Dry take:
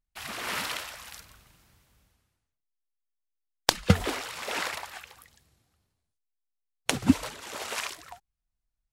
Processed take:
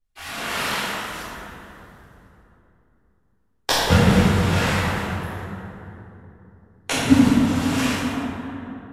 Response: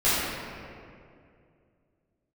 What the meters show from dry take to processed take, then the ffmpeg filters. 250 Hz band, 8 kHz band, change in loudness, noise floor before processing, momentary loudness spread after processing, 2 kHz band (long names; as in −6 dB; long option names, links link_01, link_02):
+12.0 dB, +5.5 dB, +9.0 dB, −84 dBFS, 19 LU, +9.0 dB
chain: -filter_complex "[1:a]atrim=start_sample=2205,asetrate=30429,aresample=44100[link_01];[0:a][link_01]afir=irnorm=-1:irlink=0,volume=-10dB"